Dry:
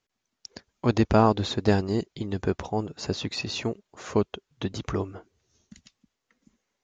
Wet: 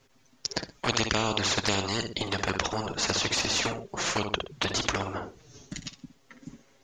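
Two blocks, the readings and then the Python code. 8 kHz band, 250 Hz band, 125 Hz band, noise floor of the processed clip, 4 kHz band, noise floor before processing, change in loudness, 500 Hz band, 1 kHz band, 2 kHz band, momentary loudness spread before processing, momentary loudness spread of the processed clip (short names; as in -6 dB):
n/a, -7.0 dB, -7.0 dB, -63 dBFS, +8.0 dB, -83 dBFS, -1.5 dB, -5.5 dB, -1.5 dB, +7.0 dB, 14 LU, 15 LU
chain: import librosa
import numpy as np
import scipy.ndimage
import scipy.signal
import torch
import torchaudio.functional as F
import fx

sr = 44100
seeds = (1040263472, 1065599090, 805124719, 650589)

p1 = fx.tilt_shelf(x, sr, db=3.0, hz=690.0)
p2 = fx.env_flanger(p1, sr, rest_ms=7.5, full_db=-15.5)
p3 = p2 + fx.echo_feedback(p2, sr, ms=61, feedback_pct=20, wet_db=-12.5, dry=0)
y = fx.spectral_comp(p3, sr, ratio=4.0)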